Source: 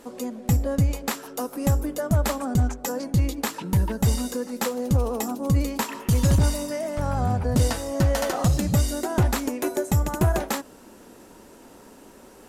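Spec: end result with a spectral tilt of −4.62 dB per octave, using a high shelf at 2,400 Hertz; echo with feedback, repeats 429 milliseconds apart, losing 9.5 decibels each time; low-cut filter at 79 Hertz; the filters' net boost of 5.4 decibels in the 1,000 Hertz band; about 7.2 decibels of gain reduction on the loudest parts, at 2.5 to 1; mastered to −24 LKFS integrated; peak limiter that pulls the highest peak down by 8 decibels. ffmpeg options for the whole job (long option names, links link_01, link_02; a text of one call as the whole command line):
ffmpeg -i in.wav -af "highpass=79,equalizer=frequency=1000:width_type=o:gain=6,highshelf=frequency=2400:gain=6,acompressor=threshold=-27dB:ratio=2.5,alimiter=limit=-18dB:level=0:latency=1,aecho=1:1:429|858|1287|1716:0.335|0.111|0.0365|0.012,volume=6dB" out.wav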